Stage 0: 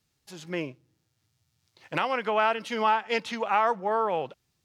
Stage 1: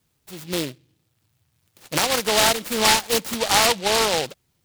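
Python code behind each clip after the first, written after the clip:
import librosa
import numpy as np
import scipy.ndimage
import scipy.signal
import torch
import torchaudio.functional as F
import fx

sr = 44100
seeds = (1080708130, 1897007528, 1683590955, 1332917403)

y = fx.noise_mod_delay(x, sr, seeds[0], noise_hz=3100.0, depth_ms=0.18)
y = F.gain(torch.from_numpy(y), 6.0).numpy()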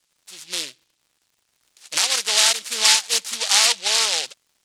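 y = fx.weighting(x, sr, curve='ITU-R 468')
y = fx.dmg_crackle(y, sr, seeds[1], per_s=130.0, level_db=-43.0)
y = F.gain(torch.from_numpy(y), -6.5).numpy()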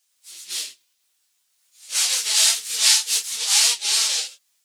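y = fx.phase_scramble(x, sr, seeds[2], window_ms=100)
y = fx.tilt_eq(y, sr, slope=3.5)
y = F.gain(torch.from_numpy(y), -8.5).numpy()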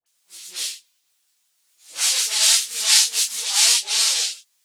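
y = fx.dispersion(x, sr, late='highs', ms=63.0, hz=1200.0)
y = F.gain(torch.from_numpy(y), 1.0).numpy()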